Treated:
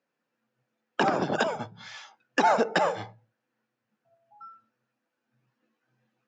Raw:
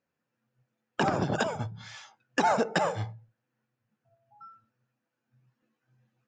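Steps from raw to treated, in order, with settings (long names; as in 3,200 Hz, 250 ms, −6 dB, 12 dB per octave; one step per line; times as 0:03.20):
three-way crossover with the lows and the highs turned down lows −21 dB, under 180 Hz, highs −22 dB, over 7,200 Hz
level +3 dB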